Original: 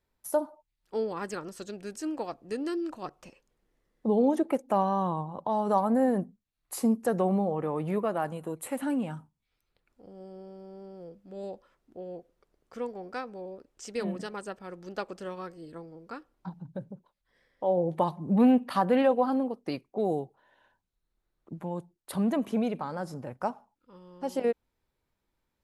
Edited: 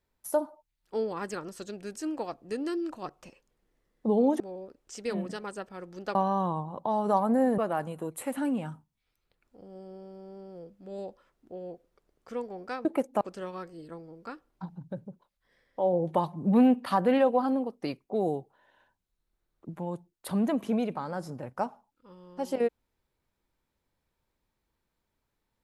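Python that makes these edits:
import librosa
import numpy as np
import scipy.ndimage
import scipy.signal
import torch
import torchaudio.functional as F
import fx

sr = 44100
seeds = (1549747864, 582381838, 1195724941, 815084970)

y = fx.edit(x, sr, fx.swap(start_s=4.4, length_s=0.36, other_s=13.3, other_length_s=1.75),
    fx.cut(start_s=6.19, length_s=1.84), tone=tone)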